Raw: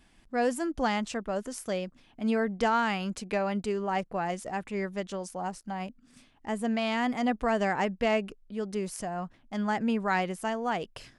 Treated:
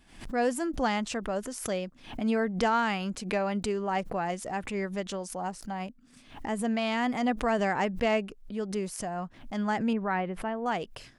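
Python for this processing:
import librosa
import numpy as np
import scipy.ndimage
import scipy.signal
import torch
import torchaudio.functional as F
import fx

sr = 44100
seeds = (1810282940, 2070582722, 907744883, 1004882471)

y = fx.air_absorb(x, sr, metres=480.0, at=(9.93, 10.66))
y = fx.pre_swell(y, sr, db_per_s=110.0)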